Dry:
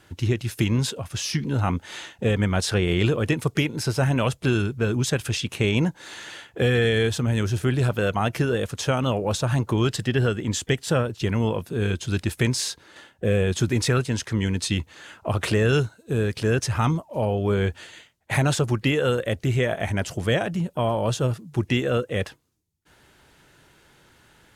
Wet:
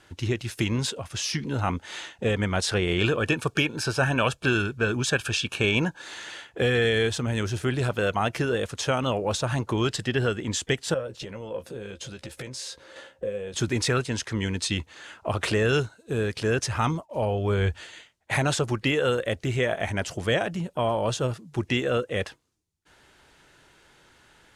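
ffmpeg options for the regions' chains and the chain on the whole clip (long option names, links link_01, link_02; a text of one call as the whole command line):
ffmpeg -i in.wav -filter_complex "[0:a]asettb=1/sr,asplit=3[link_01][link_02][link_03];[link_01]atrim=end=2.984[link_04];[link_02]atrim=start=2.98:end=6.02,asetpts=PTS-STARTPTS,afade=type=in:duration=0.004:curve=qsin,afade=type=out:start_time=3.036:duration=0.004:curve=qsin,asuperstop=centerf=2000:order=8:qfactor=5.1,equalizer=frequency=1800:width=1.3:gain=7.5[link_05];[link_03]atrim=start=6.016[link_06];[link_04][link_05]acrossfade=duration=0.004:curve1=hsin:curve2=qsin[link_07];[link_07][link_06]acrossfade=duration=0.004:curve1=qsin:curve2=hsin,asettb=1/sr,asplit=3[link_08][link_09][link_10];[link_08]atrim=end=10.944[link_11];[link_09]atrim=start=10.94:end=13.54,asetpts=PTS-STARTPTS,afade=type=in:duration=0.004:curve=qsin,afade=type=out:start_time=2.596:duration=0.004:curve=qsin,acompressor=threshold=-32dB:ratio=8:attack=3.2:release=140:knee=1:detection=peak,equalizer=frequency=530:width=6.2:gain=15,asplit=2[link_12][link_13];[link_13]adelay=15,volume=-8.5dB[link_14];[link_12][link_14]amix=inputs=2:normalize=0,atrim=end_sample=114660[link_15];[link_10]atrim=start=13.536[link_16];[link_11][link_15]acrossfade=duration=0.004:curve1=hsin:curve2=qsin[link_17];[link_17][link_16]acrossfade=duration=0.004:curve1=qsin:curve2=hsin,asettb=1/sr,asplit=3[link_18][link_19][link_20];[link_18]atrim=end=17.014[link_21];[link_19]atrim=start=17.01:end=17.81,asetpts=PTS-STARTPTS,afade=type=in:duration=0.004:curve=qsin,afade=type=out:start_time=0.796:duration=0.004:curve=qsin,asubboost=boost=10:cutoff=130,agate=range=-33dB:threshold=-48dB:ratio=3:release=100:detection=peak[link_22];[link_20]atrim=start=17.806[link_23];[link_21][link_22]acrossfade=duration=0.004:curve1=hsin:curve2=qsin[link_24];[link_24][link_23]acrossfade=duration=0.004:curve1=qsin:curve2=hsin,lowpass=9800,equalizer=frequency=130:width_type=o:width=2.4:gain=-5.5" out.wav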